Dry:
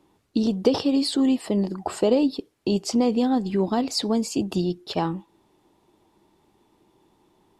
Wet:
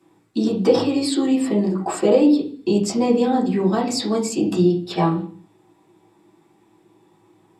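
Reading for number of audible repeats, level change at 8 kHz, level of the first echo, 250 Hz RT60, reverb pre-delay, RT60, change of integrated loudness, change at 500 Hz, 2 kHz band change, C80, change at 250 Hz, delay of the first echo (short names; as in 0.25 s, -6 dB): none, +4.5 dB, none, 0.60 s, 3 ms, 0.50 s, +4.0 dB, +5.5 dB, +5.0 dB, 14.5 dB, +4.0 dB, none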